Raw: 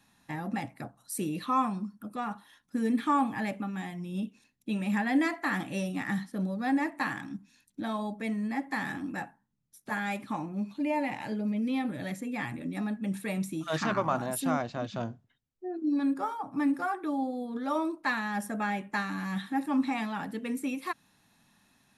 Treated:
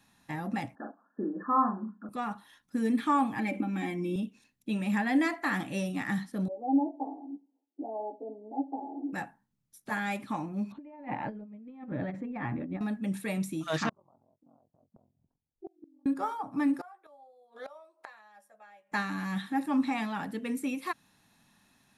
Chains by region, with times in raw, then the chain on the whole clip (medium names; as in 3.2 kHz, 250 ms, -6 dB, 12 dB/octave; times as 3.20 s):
0.75–2.09 s: brick-wall FIR band-pass 190–1800 Hz + doubling 41 ms -4.5 dB
3.39–4.16 s: comb 3.8 ms, depth 66% + compression 5:1, threshold -32 dBFS + small resonant body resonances 330/2300 Hz, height 17 dB, ringing for 40 ms
6.48–9.13 s: Chebyshev band-pass 260–850 Hz, order 5 + doubling 14 ms -5.5 dB
10.72–12.81 s: low-pass 1.4 kHz + compressor with a negative ratio -37 dBFS, ratio -0.5
13.89–16.06 s: steep low-pass 960 Hz + inverted gate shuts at -29 dBFS, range -32 dB + ring modulator 22 Hz
16.81–18.92 s: resonant low shelf 400 Hz -13 dB, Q 3 + doubling 14 ms -8 dB + inverted gate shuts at -31 dBFS, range -25 dB
whole clip: none